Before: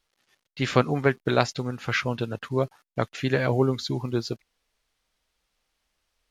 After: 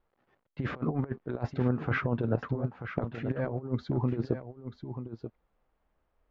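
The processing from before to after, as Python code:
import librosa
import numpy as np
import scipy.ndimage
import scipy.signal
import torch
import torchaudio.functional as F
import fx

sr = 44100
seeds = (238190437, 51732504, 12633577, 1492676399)

y = scipy.signal.sosfilt(scipy.signal.butter(2, 1000.0, 'lowpass', fs=sr, output='sos'), x)
y = fx.over_compress(y, sr, threshold_db=-29.0, ratio=-0.5)
y = y + 10.0 ** (-10.0 / 20.0) * np.pad(y, (int(935 * sr / 1000.0), 0))[:len(y)]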